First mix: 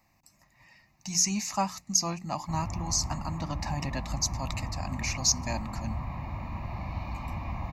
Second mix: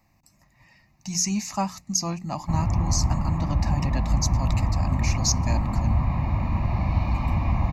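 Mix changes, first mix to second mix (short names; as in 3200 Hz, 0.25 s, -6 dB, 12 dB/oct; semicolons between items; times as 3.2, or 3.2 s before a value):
background +6.5 dB; master: add low shelf 390 Hz +6.5 dB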